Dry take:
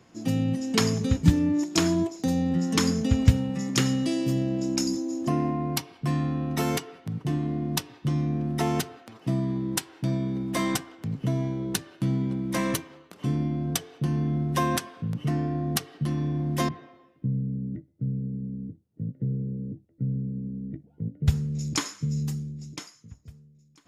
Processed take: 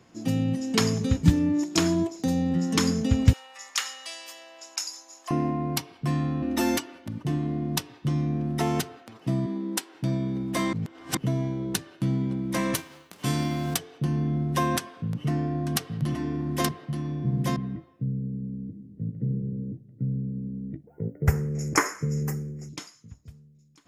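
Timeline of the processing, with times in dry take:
3.33–5.31 s: high-pass 840 Hz 24 dB/octave
6.42–7.23 s: comb 3.4 ms, depth 90%
9.46–9.95 s: elliptic high-pass 200 Hz
10.73–11.17 s: reverse
12.73–13.77 s: formants flattened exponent 0.6
14.79–18.04 s: delay 876 ms -3.5 dB
18.62–19.25 s: reverb throw, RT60 2.2 s, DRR 4 dB
20.87–22.69 s: FFT filter 270 Hz 0 dB, 390 Hz +13 dB, 580 Hz +11 dB, 940 Hz +10 dB, 2 kHz +12 dB, 3.7 kHz -19 dB, 5.4 kHz +1 dB, 9.6 kHz +3 dB, 15 kHz +13 dB

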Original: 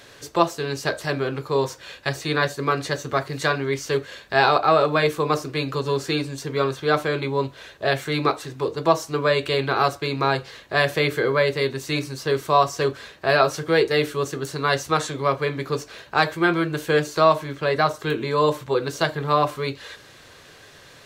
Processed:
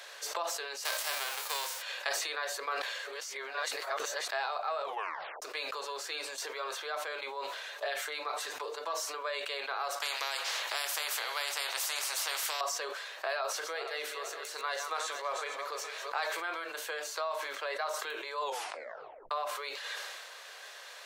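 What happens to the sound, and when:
0.84–1.81 s: formants flattened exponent 0.3
2.82–4.28 s: reverse
4.83 s: tape stop 0.59 s
7.75–9.14 s: comb 6.8 ms
10.00–12.61 s: spectrum-flattening compressor 4:1
13.38–16.44 s: backward echo that repeats 230 ms, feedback 56%, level -11 dB
18.41 s: tape stop 0.90 s
whole clip: compression 10:1, threshold -31 dBFS; inverse Chebyshev high-pass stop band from 220 Hz, stop band 50 dB; decay stretcher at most 28 dB/s

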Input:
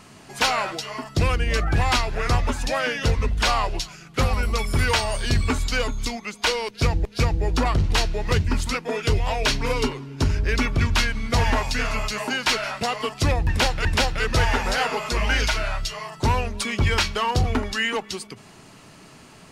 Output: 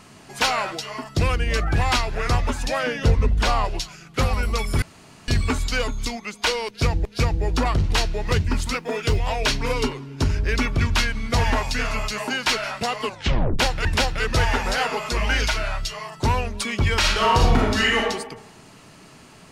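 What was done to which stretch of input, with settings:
2.83–3.65 s: tilt shelf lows +4 dB, about 930 Hz
4.82–5.28 s: room tone
8.68–9.17 s: companded quantiser 8-bit
13.04 s: tape stop 0.55 s
16.99–18.02 s: reverb throw, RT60 0.9 s, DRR -4 dB

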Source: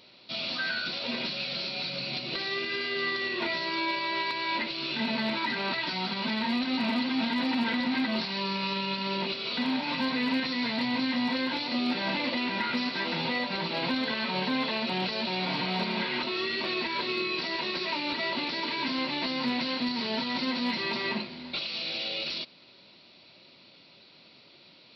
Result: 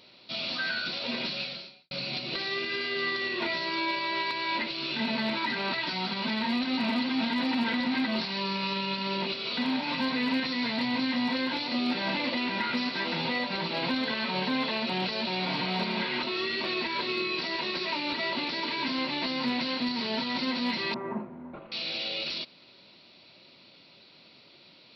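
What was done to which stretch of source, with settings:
1.41–1.91 s: fade out quadratic
20.94–21.72 s: low-pass 1.3 kHz 24 dB/octave

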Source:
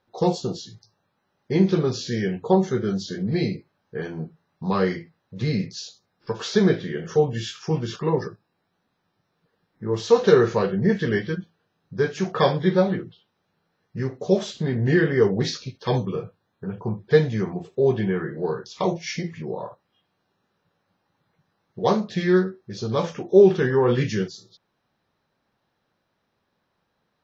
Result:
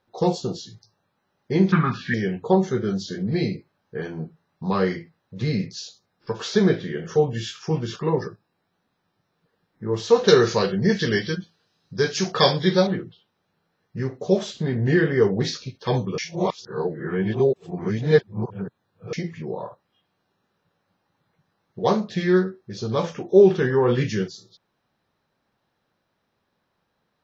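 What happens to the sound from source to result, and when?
1.72–2.14 s: FFT filter 120 Hz 0 dB, 200 Hz +8 dB, 470 Hz -15 dB, 1.1 kHz +14 dB, 2 kHz +15 dB, 4.5 kHz -11 dB, 8.5 kHz -22 dB
10.28–12.87 s: peaking EQ 5 kHz +14.5 dB 1.4 oct
16.18–19.13 s: reverse

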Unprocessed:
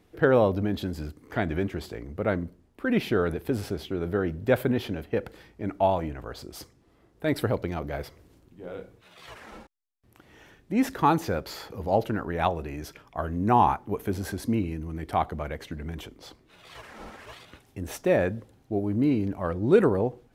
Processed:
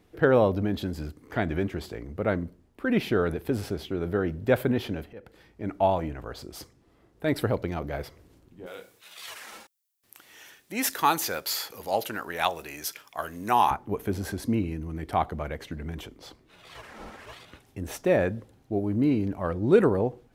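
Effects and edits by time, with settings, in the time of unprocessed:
5.13–5.92 s: fade in equal-power, from -22.5 dB
8.66–13.71 s: tilt EQ +4.5 dB/octave

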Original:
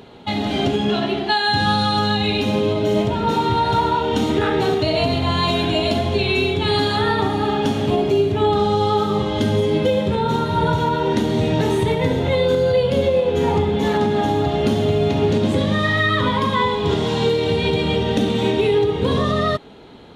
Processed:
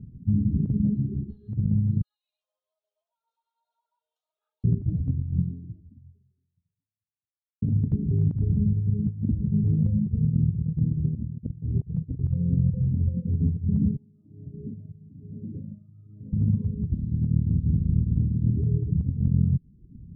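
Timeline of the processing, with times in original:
2.01–4.64 s: steep high-pass 720 Hz 72 dB/octave
5.37–7.62 s: fade out exponential
9.07–9.64 s: reverse
10.94–12.18 s: tilt EQ -2 dB/octave
13.96–16.33 s: wah-wah 1.1 Hz 440–1100 Hz, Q 3.5
16.90–18.55 s: spectral peaks clipped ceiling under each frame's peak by 21 dB
whole clip: inverse Chebyshev low-pass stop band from 740 Hz, stop band 70 dB; reverb removal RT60 0.76 s; compressor with a negative ratio -30 dBFS, ratio -0.5; trim +7 dB

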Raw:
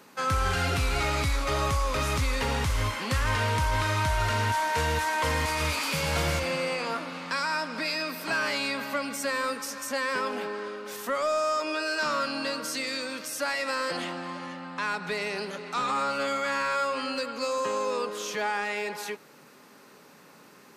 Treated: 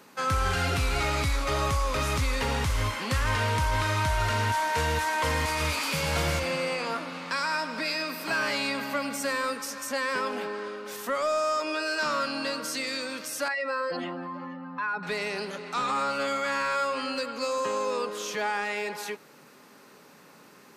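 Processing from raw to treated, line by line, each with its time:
7.14–9.35 s: bit-crushed delay 101 ms, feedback 55%, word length 10-bit, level -14 dB
13.48–15.03 s: spectral contrast enhancement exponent 1.8

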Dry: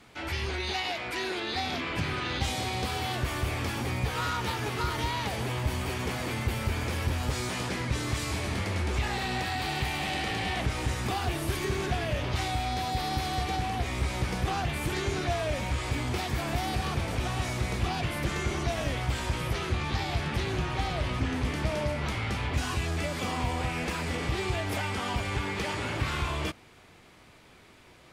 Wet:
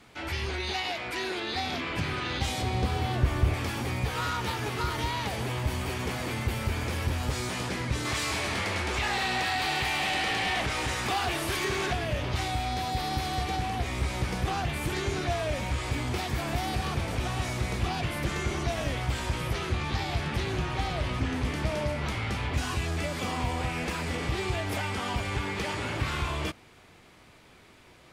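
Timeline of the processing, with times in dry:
2.62–3.54 s: tilt EQ -2 dB/octave
8.05–11.93 s: overdrive pedal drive 11 dB, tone 7.5 kHz, clips at -18.5 dBFS

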